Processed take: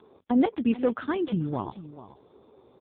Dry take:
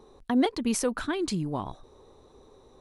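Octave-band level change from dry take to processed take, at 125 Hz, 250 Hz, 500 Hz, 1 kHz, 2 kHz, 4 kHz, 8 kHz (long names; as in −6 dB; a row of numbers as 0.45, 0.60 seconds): +2.5 dB, +2.5 dB, +2.0 dB, +0.5 dB, −2.5 dB, −9.0 dB, below −40 dB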